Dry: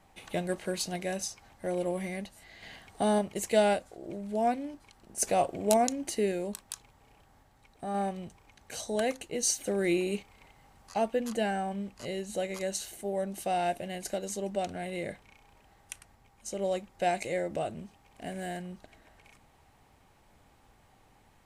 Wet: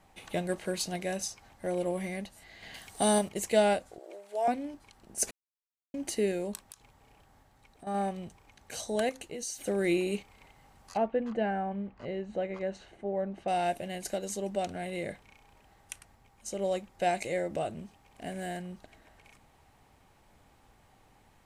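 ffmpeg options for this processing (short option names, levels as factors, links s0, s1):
-filter_complex "[0:a]asettb=1/sr,asplit=3[s0][s1][s2];[s0]atrim=end=2.744[s3];[s1]atrim=start=2.74:end=3.29,asetpts=PTS-STARTPTS,afade=t=in:d=0.004:c=qsin,afade=t=out:st=0.546:d=0.004:c=qsin,equalizer=f=12000:t=o:w=2.5:g=13[s4];[s2]atrim=start=3.286[s5];[s3][s4]acrossfade=d=0.004:c1=hsin:c2=qsin[s6];[s6][s5]acrossfade=d=0.004:c1=qsin:c2=hsin,asettb=1/sr,asplit=3[s7][s8][s9];[s7]atrim=end=3.994[s10];[s8]atrim=start=3.99:end=4.48,asetpts=PTS-STARTPTS,afade=t=in:d=0.004:c=qsin,afade=t=out:st=0.486:d=0.004:c=qsin,highpass=f=470:w=0.5412,highpass=f=470:w=1.3066[s11];[s9]atrim=start=4.476[s12];[s10][s11]acrossfade=d=0.004:c1=hsin:c2=qsin[s13];[s13][s12]acrossfade=d=0.004:c1=qsin:c2=hsin,asettb=1/sr,asplit=3[s14][s15][s16];[s14]atrim=end=6.634[s17];[s15]atrim=start=6.63:end=7.87,asetpts=PTS-STARTPTS,afade=t=in:d=0.004:c=qsin,afade=t=out:st=1.236:d=0.004:c=qsin,acompressor=threshold=0.00447:ratio=4:attack=3.2:release=140:knee=1:detection=peak[s18];[s16]atrim=start=7.866[s19];[s17][s18]acrossfade=d=0.004:c1=hsin:c2=qsin[s20];[s20][s19]acrossfade=d=0.004:c1=qsin:c2=hsin,asettb=1/sr,asplit=3[s21][s22][s23];[s21]atrim=end=9.094[s24];[s22]atrim=start=9.09:end=9.67,asetpts=PTS-STARTPTS,afade=t=in:d=0.004:c=qsin,afade=t=out:st=0.576:d=0.004:c=qsin,acompressor=threshold=0.0141:ratio=3:attack=3.2:release=140:knee=1:detection=peak[s25];[s23]atrim=start=9.666[s26];[s24][s25]acrossfade=d=0.004:c1=hsin:c2=qsin[s27];[s27][s26]acrossfade=d=0.004:c1=qsin:c2=hsin,asettb=1/sr,asplit=3[s28][s29][s30];[s28]atrim=end=10.974[s31];[s29]atrim=start=10.97:end=13.48,asetpts=PTS-STARTPTS,afade=t=in:d=0.004:c=qsin,afade=t=out:st=2.506:d=0.004:c=qsin,lowpass=1900[s32];[s30]atrim=start=13.476[s33];[s31][s32]acrossfade=d=0.004:c1=hsin:c2=qsin[s34];[s34][s33]acrossfade=d=0.004:c1=qsin:c2=hsin,asplit=3[s35][s36][s37];[s35]atrim=end=5.31,asetpts=PTS-STARTPTS,afade=t=out:st=5.306:d=0.004:c=hsin[s38];[s36]atrim=start=5.31:end=5.94,asetpts=PTS-STARTPTS,volume=0[s39];[s37]atrim=start=5.94,asetpts=PTS-STARTPTS,afade=t=in:d=0.004:c=hsin[s40];[s38][s39][s40]concat=n=3:v=0:a=1"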